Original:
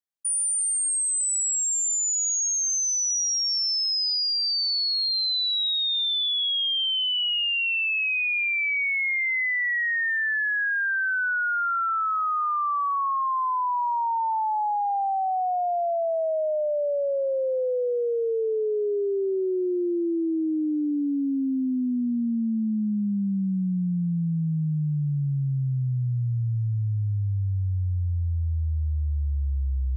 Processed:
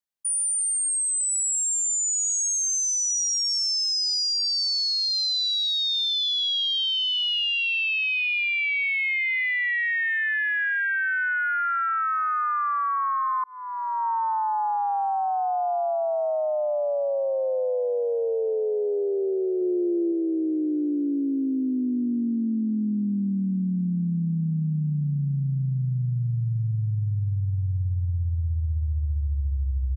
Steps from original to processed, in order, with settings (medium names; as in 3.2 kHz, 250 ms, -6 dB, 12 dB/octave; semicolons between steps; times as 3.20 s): 19.61–20.12 s: dynamic bell 200 Hz, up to +3 dB, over -38 dBFS, Q 1; feedback delay 1063 ms, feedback 41%, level -15 dB; 13.44–14.07 s: fade in